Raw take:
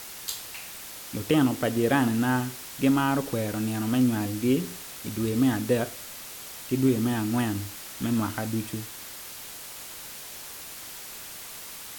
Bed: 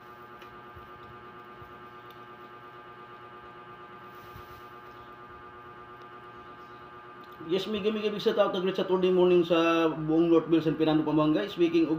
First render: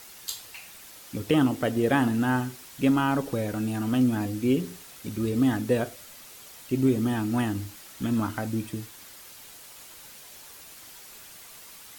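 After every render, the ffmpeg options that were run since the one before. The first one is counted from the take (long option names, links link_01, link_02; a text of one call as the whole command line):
ffmpeg -i in.wav -af "afftdn=noise_reduction=7:noise_floor=-41" out.wav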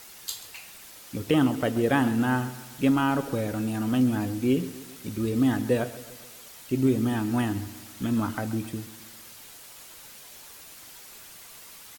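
ffmpeg -i in.wav -af "aecho=1:1:133|266|399|532|665:0.158|0.0856|0.0462|0.025|0.0135" out.wav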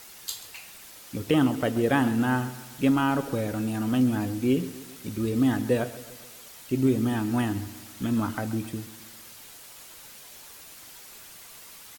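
ffmpeg -i in.wav -af anull out.wav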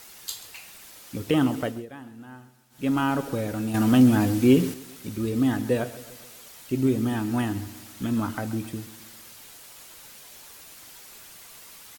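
ffmpeg -i in.wav -filter_complex "[0:a]asettb=1/sr,asplit=3[link_01][link_02][link_03];[link_01]atrim=end=3.744[link_04];[link_02]atrim=start=3.74:end=4.74,asetpts=PTS-STARTPTS,afade=type=in:duration=0.004:curve=qsin,afade=type=out:start_time=0.996:duration=0.004:curve=qsin,acontrast=71[link_05];[link_03]atrim=start=4.736[link_06];[link_04][link_05]acrossfade=duration=0.004:curve1=hsin:curve2=qsin[link_07];[link_07][link_06]acrossfade=duration=0.004:curve1=qsin:curve2=hsin,asplit=3[link_08][link_09][link_10];[link_08]atrim=end=1.86,asetpts=PTS-STARTPTS,afade=type=out:start_time=1.58:duration=0.28:silence=0.105925[link_11];[link_09]atrim=start=1.86:end=2.7,asetpts=PTS-STARTPTS,volume=-19.5dB[link_12];[link_10]atrim=start=2.7,asetpts=PTS-STARTPTS,afade=type=in:duration=0.28:silence=0.105925[link_13];[link_11][link_12][link_13]concat=n=3:v=0:a=1" out.wav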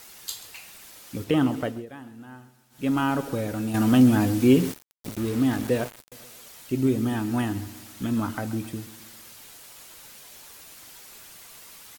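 ffmpeg -i in.wav -filter_complex "[0:a]asettb=1/sr,asplit=3[link_01][link_02][link_03];[link_01]atrim=end=1.244[link_04];[link_02]atrim=start=1.24:end=1.87,asetpts=PTS-STARTPTS,afade=type=in:duration=0.004:curve=qsin,afade=type=out:start_time=0.626:duration=0.004:curve=qsin,highshelf=frequency=4400:gain=-5[link_05];[link_03]atrim=start=1.866[link_06];[link_04][link_05]acrossfade=duration=0.004:curve1=hsin:curve2=qsin[link_07];[link_07][link_06]acrossfade=duration=0.004:curve1=qsin:curve2=hsin,asettb=1/sr,asplit=3[link_08][link_09][link_10];[link_08]atrim=end=4.404[link_11];[link_09]atrim=start=4.4:end=6.12,asetpts=PTS-STARTPTS,afade=type=in:duration=0.004:curve=qsin,afade=type=out:start_time=1.716:duration=0.004:curve=qsin,aeval=exprs='val(0)*gte(abs(val(0)),0.0224)':channel_layout=same[link_12];[link_10]atrim=start=6.116[link_13];[link_11][link_12]acrossfade=duration=0.004:curve1=hsin:curve2=qsin[link_14];[link_14][link_13]acrossfade=duration=0.004:curve1=qsin:curve2=hsin" out.wav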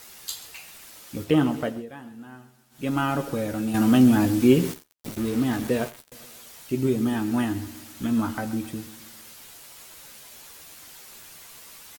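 ffmpeg -i in.wav -filter_complex "[0:a]asplit=2[link_01][link_02];[link_02]adelay=13,volume=-7.5dB[link_03];[link_01][link_03]amix=inputs=2:normalize=0,aecho=1:1:86:0.0794" out.wav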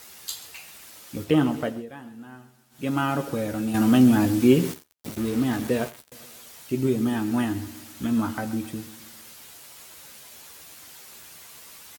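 ffmpeg -i in.wav -af "highpass=45" out.wav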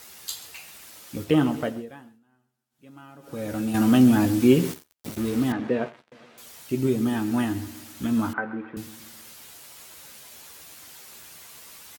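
ffmpeg -i in.wav -filter_complex "[0:a]asettb=1/sr,asplit=3[link_01][link_02][link_03];[link_01]atrim=end=5.524[link_04];[link_02]atrim=start=5.52:end=6.38,asetpts=PTS-STARTPTS,afade=type=in:duration=0.004:curve=qsin,afade=type=out:start_time=0.856:duration=0.004:curve=qsin,highpass=150,lowpass=2400[link_05];[link_03]atrim=start=6.376[link_06];[link_04][link_05]acrossfade=duration=0.004:curve1=hsin:curve2=qsin[link_07];[link_07][link_06]acrossfade=duration=0.004:curve1=qsin:curve2=hsin,asettb=1/sr,asplit=3[link_08][link_09][link_10];[link_08]atrim=end=8.334[link_11];[link_09]atrim=start=8.33:end=8.77,asetpts=PTS-STARTPTS,afade=type=in:duration=0.004:curve=qsin,afade=type=out:start_time=0.436:duration=0.004:curve=qsin,highpass=240,equalizer=frequency=280:width_type=q:width=4:gain=-7,equalizer=frequency=440:width_type=q:width=4:gain=6,equalizer=frequency=640:width_type=q:width=4:gain=-4,equalizer=frequency=1000:width_type=q:width=4:gain=4,equalizer=frequency=1500:width_type=q:width=4:gain=8,lowpass=frequency=2100:width=0.5412,lowpass=frequency=2100:width=1.3066[link_12];[link_10]atrim=start=8.766[link_13];[link_11][link_12]acrossfade=duration=0.004:curve1=hsin:curve2=qsin[link_14];[link_14][link_13]acrossfade=duration=0.004:curve1=qsin:curve2=hsin,asplit=3[link_15][link_16][link_17];[link_15]atrim=end=2.2,asetpts=PTS-STARTPTS,afade=type=out:start_time=1.85:duration=0.35:silence=0.0794328[link_18];[link_16]atrim=start=2.2:end=3.21,asetpts=PTS-STARTPTS,volume=-22dB[link_19];[link_17]atrim=start=3.21,asetpts=PTS-STARTPTS,afade=type=in:duration=0.35:silence=0.0794328[link_20];[link_18][link_19][link_20]concat=n=3:v=0:a=1" out.wav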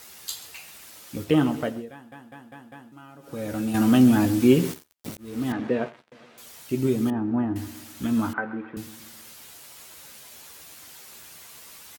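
ffmpeg -i in.wav -filter_complex "[0:a]asettb=1/sr,asplit=3[link_01][link_02][link_03];[link_01]atrim=end=7.104[link_04];[link_02]atrim=start=7.1:end=7.56,asetpts=PTS-STARTPTS,afade=type=in:duration=0.004:curve=qsin,afade=type=out:start_time=0.456:duration=0.004:curve=qsin,lowpass=1000[link_05];[link_03]atrim=start=7.556[link_06];[link_04][link_05]acrossfade=duration=0.004:curve1=hsin:curve2=qsin[link_07];[link_07][link_06]acrossfade=duration=0.004:curve1=qsin:curve2=hsin,asplit=7[link_08][link_09][link_10][link_11][link_12][link_13][link_14];[link_08]atrim=end=2.122[link_15];[link_09]atrim=start=1.918:end=2.122[link_16];[link_10]atrim=start=1.918:end=2.122[link_17];[link_11]atrim=start=1.918:end=2.122[link_18];[link_12]atrim=start=1.918:end=2.122[link_19];[link_13]atrim=start=2.918:end=5.17,asetpts=PTS-STARTPTS,afade=type=out:start_time=2.248:duration=0.004:curve=hsin[link_20];[link_14]atrim=start=5.17,asetpts=PTS-STARTPTS,afade=type=in:duration=0.42[link_21];[link_15][link_16]acrossfade=duration=0.004:curve1=hsin:curve2=hsin[link_22];[link_22][link_17]acrossfade=duration=0.004:curve1=hsin:curve2=hsin[link_23];[link_23][link_18]acrossfade=duration=0.004:curve1=hsin:curve2=hsin[link_24];[link_24][link_19]acrossfade=duration=0.004:curve1=hsin:curve2=hsin[link_25];[link_20][link_21]concat=n=2:v=0:a=1[link_26];[link_25][link_26]acrossfade=duration=0.004:curve1=hsin:curve2=hsin" out.wav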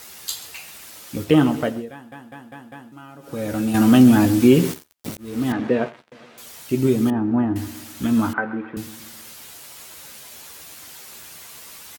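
ffmpeg -i in.wav -af "volume=5dB,alimiter=limit=-3dB:level=0:latency=1" out.wav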